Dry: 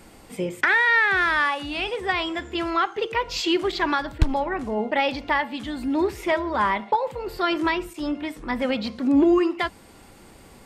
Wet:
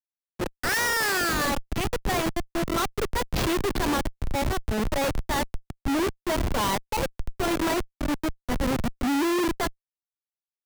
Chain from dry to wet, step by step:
mains hum 50 Hz, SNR 32 dB
comparator with hysteresis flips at −23 dBFS
multiband upward and downward expander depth 70%

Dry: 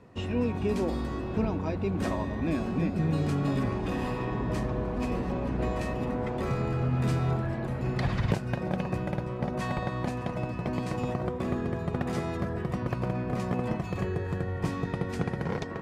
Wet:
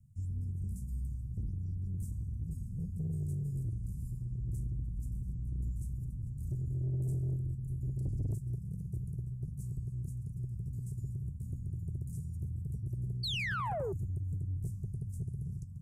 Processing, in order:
inverse Chebyshev band-stop filter 330–3,800 Hz, stop band 50 dB
sound drawn into the spectrogram fall, 0:13.23–0:13.93, 360–4,600 Hz −34 dBFS
soft clipping −29 dBFS, distortion −15 dB

